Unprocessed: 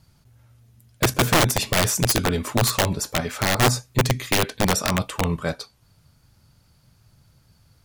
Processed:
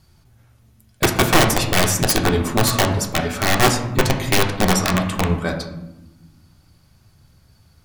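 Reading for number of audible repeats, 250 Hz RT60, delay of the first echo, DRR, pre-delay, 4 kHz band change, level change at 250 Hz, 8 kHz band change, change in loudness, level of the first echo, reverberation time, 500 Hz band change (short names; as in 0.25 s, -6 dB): none, 1.8 s, none, 3.0 dB, 3 ms, +2.5 dB, +5.0 dB, +2.0 dB, +3.0 dB, none, 1.1 s, +4.0 dB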